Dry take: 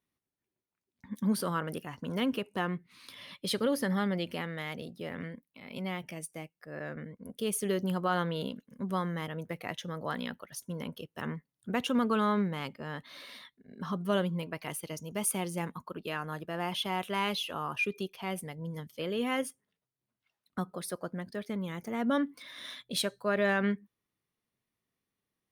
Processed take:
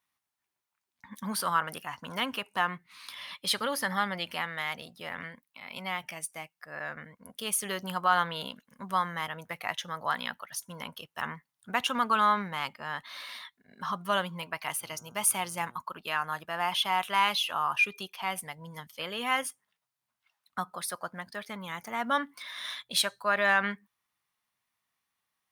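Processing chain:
low shelf with overshoot 610 Hz −12 dB, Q 1.5
0:14.80–0:15.77: hum with harmonics 120 Hz, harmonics 13, −66 dBFS −3 dB per octave
level +5.5 dB

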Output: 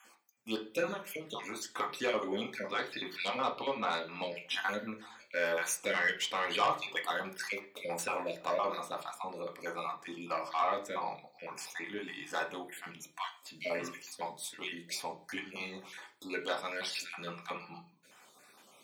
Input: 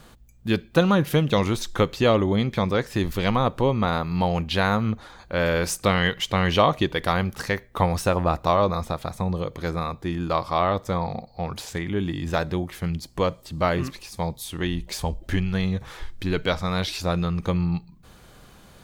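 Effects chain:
time-frequency cells dropped at random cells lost 37%
high-pass filter 470 Hz 12 dB per octave
0:00.85–0:01.65: downward compressor 5 to 1, threshold −31 dBFS, peak gain reduction 10.5 dB
0:02.68–0:04.36: high shelf with overshoot 5,500 Hz −9 dB, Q 3
soft clipping −15.5 dBFS, distortion −15 dB
convolution reverb RT60 0.40 s, pre-delay 3 ms, DRR 0.5 dB
level −5.5 dB

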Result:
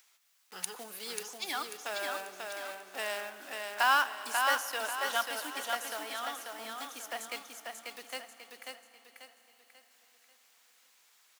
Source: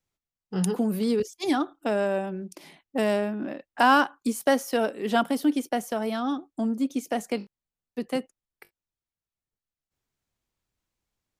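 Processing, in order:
one scale factor per block 5 bits
high-pass filter 1,200 Hz 12 dB per octave
upward compression, threshold −46 dBFS
repeating echo 540 ms, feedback 38%, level −4 dB
on a send at −14 dB: convolution reverb RT60 5.6 s, pre-delay 31 ms
on the sum: level −2 dB

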